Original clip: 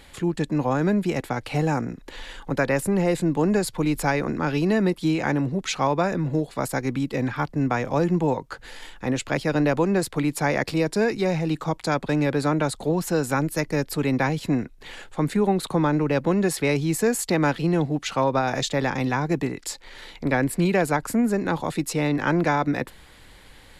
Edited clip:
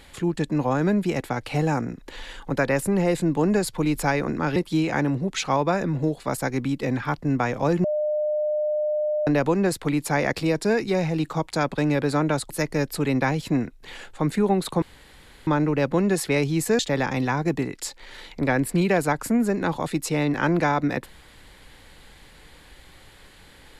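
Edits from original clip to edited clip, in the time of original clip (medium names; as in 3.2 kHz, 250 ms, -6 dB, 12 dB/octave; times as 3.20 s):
4.56–4.87 s: delete
8.15–9.58 s: bleep 604 Hz -21 dBFS
12.81–13.48 s: delete
15.80 s: insert room tone 0.65 s
17.12–18.63 s: delete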